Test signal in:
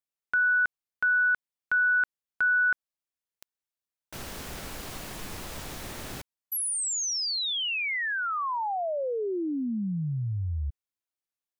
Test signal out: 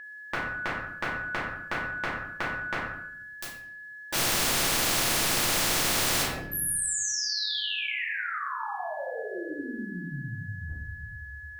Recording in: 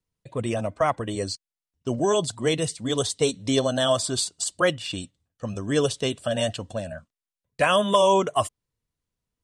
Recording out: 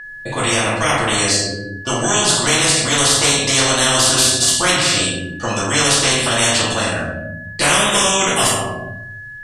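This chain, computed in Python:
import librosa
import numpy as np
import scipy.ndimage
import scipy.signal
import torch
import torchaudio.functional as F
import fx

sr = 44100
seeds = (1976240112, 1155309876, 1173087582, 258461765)

y = fx.doubler(x, sr, ms=29.0, db=-12.0)
y = fx.room_shoebox(y, sr, seeds[0], volume_m3=110.0, walls='mixed', distance_m=2.5)
y = y + 10.0 ** (-41.0 / 20.0) * np.sin(2.0 * np.pi * 1700.0 * np.arange(len(y)) / sr)
y = fx.high_shelf(y, sr, hz=9000.0, db=-4.0)
y = fx.spectral_comp(y, sr, ratio=4.0)
y = F.gain(torch.from_numpy(y), -5.0).numpy()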